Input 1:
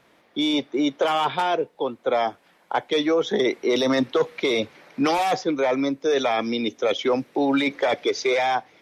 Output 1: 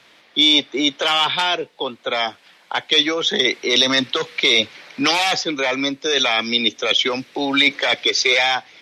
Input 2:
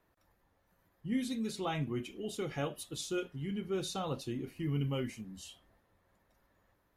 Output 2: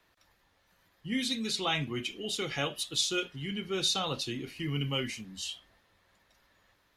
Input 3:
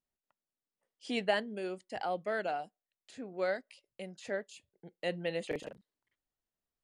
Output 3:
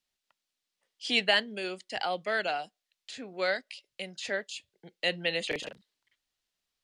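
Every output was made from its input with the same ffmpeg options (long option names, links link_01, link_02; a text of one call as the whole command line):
ffmpeg -i in.wav -filter_complex "[0:a]equalizer=frequency=3800:width_type=o:width=2.6:gain=14.5,acrossover=split=270|1200[link_01][link_02][link_03];[link_02]alimiter=limit=-18.5dB:level=0:latency=1:release=230[link_04];[link_01][link_04][link_03]amix=inputs=3:normalize=0" out.wav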